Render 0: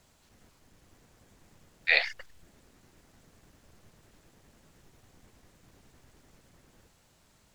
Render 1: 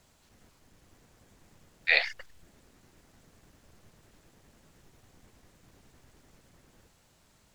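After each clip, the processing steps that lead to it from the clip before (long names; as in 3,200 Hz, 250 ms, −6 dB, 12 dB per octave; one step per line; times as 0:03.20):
no processing that can be heard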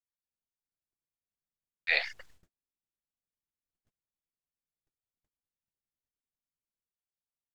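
noise gate −52 dBFS, range −41 dB
level −4 dB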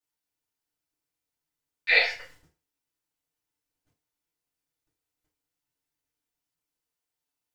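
feedback delay network reverb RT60 0.37 s, low-frequency decay 0.75×, high-frequency decay 0.9×, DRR −7.5 dB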